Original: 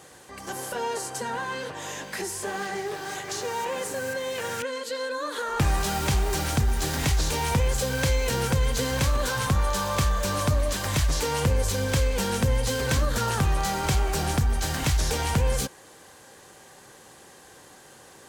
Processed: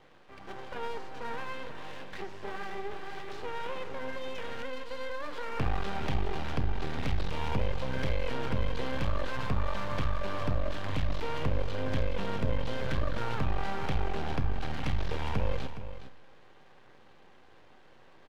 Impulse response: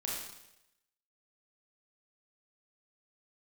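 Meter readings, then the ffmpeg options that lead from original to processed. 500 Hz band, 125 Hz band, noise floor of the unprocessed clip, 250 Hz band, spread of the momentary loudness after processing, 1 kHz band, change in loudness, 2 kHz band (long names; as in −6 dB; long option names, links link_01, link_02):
−7.5 dB, −8.0 dB, −50 dBFS, −6.5 dB, 9 LU, −7.5 dB, −9.0 dB, −8.5 dB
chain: -filter_complex "[0:a]lowpass=frequency=3300:width=0.5412,lowpass=frequency=3300:width=1.3066,equalizer=frequency=1700:width=1.5:gain=-2.5,aeval=exprs='max(val(0),0)':channel_layout=same,aecho=1:1:415:0.251,asplit=2[link_01][link_02];[1:a]atrim=start_sample=2205[link_03];[link_02][link_03]afir=irnorm=-1:irlink=0,volume=-15dB[link_04];[link_01][link_04]amix=inputs=2:normalize=0,volume=-4.5dB"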